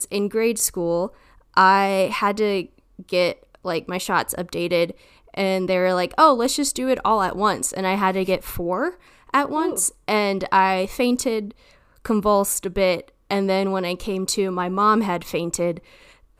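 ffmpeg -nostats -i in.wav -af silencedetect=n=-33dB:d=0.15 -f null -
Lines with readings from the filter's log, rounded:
silence_start: 1.08
silence_end: 1.57 | silence_duration: 0.49
silence_start: 2.65
silence_end: 2.99 | silence_duration: 0.34
silence_start: 3.33
silence_end: 3.55 | silence_duration: 0.22
silence_start: 4.91
silence_end: 5.34 | silence_duration: 0.43
silence_start: 8.93
silence_end: 9.29 | silence_duration: 0.37
silence_start: 9.89
silence_end: 10.08 | silence_duration: 0.19
silence_start: 11.51
silence_end: 12.05 | silence_duration: 0.54
silence_start: 13.08
silence_end: 13.31 | silence_duration: 0.22
silence_start: 15.79
silence_end: 16.40 | silence_duration: 0.61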